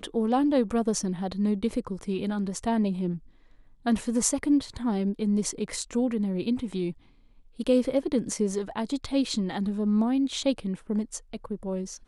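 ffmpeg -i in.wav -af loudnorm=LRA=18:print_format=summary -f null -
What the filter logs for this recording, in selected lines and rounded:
Input Integrated:    -27.9 LUFS
Input True Peak:      -6.9 dBTP
Input LRA:             1.2 LU
Input Threshold:     -38.2 LUFS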